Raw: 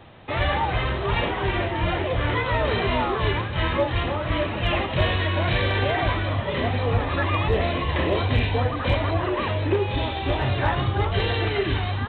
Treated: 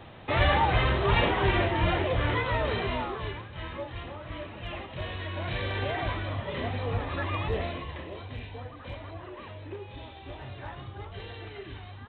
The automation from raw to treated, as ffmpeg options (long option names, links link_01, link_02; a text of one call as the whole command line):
ffmpeg -i in.wav -af "volume=6.5dB,afade=type=out:start_time=1.42:duration=1.44:silence=0.446684,afade=type=out:start_time=2.86:duration=0.53:silence=0.421697,afade=type=in:start_time=5.02:duration=0.83:silence=0.473151,afade=type=out:start_time=7.56:duration=0.48:silence=0.316228" out.wav